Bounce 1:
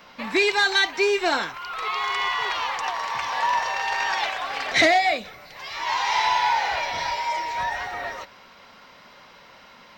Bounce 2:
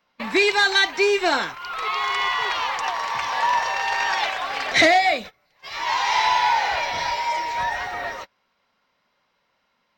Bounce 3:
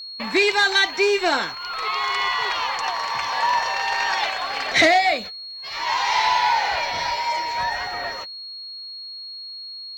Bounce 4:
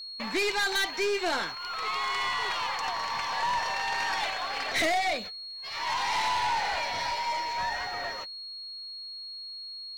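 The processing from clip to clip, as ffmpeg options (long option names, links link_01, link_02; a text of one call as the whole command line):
ffmpeg -i in.wav -af "agate=range=-23dB:threshold=-35dB:ratio=16:detection=peak,volume=2dB" out.wav
ffmpeg -i in.wav -af "aeval=exprs='val(0)+0.0224*sin(2*PI*4300*n/s)':channel_layout=same" out.wav
ffmpeg -i in.wav -af "aeval=exprs='(tanh(8.91*val(0)+0.25)-tanh(0.25))/8.91':channel_layout=same,volume=-4.5dB" out.wav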